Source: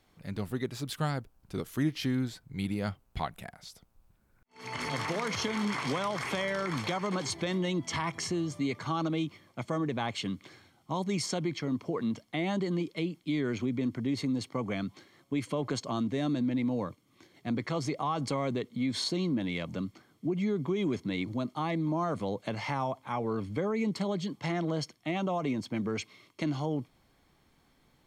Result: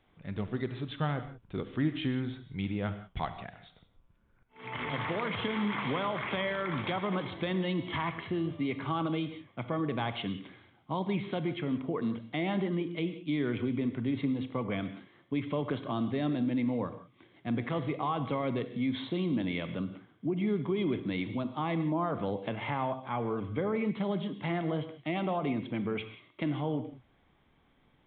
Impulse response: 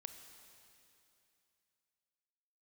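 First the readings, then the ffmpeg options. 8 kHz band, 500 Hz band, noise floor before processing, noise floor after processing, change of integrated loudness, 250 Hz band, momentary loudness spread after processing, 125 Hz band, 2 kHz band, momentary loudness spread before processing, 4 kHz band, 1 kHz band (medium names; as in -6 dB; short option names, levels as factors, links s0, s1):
under -35 dB, 0.0 dB, -67 dBFS, -67 dBFS, -0.5 dB, -0.5 dB, 7 LU, 0.0 dB, 0.0 dB, 7 LU, -3.5 dB, 0.0 dB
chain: -filter_complex "[1:a]atrim=start_sample=2205,afade=t=out:st=0.24:d=0.01,atrim=end_sample=11025[s0];[0:a][s0]afir=irnorm=-1:irlink=0,aresample=8000,aresample=44100,volume=1.78"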